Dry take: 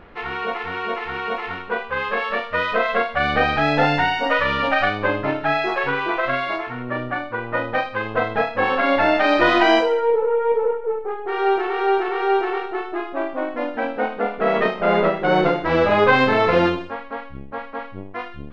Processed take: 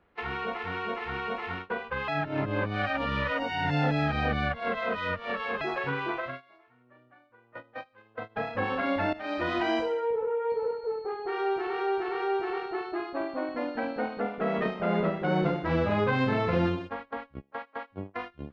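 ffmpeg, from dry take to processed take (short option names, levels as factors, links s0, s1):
-filter_complex "[0:a]asettb=1/sr,asplit=3[s0][s1][s2];[s0]atrim=end=10.504[s3];[s1]atrim=start=10.5:end=14.2,asetpts=PTS-STARTPTS,afade=t=in:d=0.004:c=qsin,afade=t=out:st=3.696:d=0.004:c=qsin,aeval=exprs='val(0)+0.00316*sin(2*PI*4300*n/s)':c=same[s4];[s2]atrim=start=14.196[s5];[s3][s4]acrossfade=d=0.004:c1=hsin:c2=qsin[s6];[s6][s5]acrossfade=d=0.004:c1=qsin:c2=hsin,asplit=3[s7][s8][s9];[s7]afade=t=out:st=17.39:d=0.02[s10];[s8]highpass=f=510:p=1,afade=t=in:st=17.39:d=0.02,afade=t=out:st=17.9:d=0.02[s11];[s9]afade=t=in:st=17.9:d=0.02[s12];[s10][s11][s12]amix=inputs=3:normalize=0,asplit=6[s13][s14][s15][s16][s17][s18];[s13]atrim=end=2.082[s19];[s14]atrim=start=2.078:end=5.612,asetpts=PTS-STARTPTS,areverse[s20];[s15]atrim=start=5.608:end=6.34,asetpts=PTS-STARTPTS,afade=t=out:st=0.512:d=0.22:silence=0.251189[s21];[s16]atrim=start=6.34:end=8.29,asetpts=PTS-STARTPTS,volume=0.251[s22];[s17]atrim=start=8.29:end=9.13,asetpts=PTS-STARTPTS,afade=t=in:d=0.22:silence=0.251189,afade=t=out:st=0.836:d=0.004:c=hsin:silence=0.149624[s23];[s18]atrim=start=9.13,asetpts=PTS-STARTPTS,afade=t=in:d=0.66:silence=0.149624[s24];[s19][s20]acrossfade=d=0.004:c1=hsin:c2=hsin[s25];[s21][s22][s23][s24]concat=n=4:v=0:a=1[s26];[s25][s26]acrossfade=d=0.004:c1=hsin:c2=hsin,agate=range=0.0891:threshold=0.0282:ratio=16:detection=peak,highpass=41,acrossover=split=220[s27][s28];[s28]acompressor=threshold=0.0141:ratio=2[s29];[s27][s29]amix=inputs=2:normalize=0"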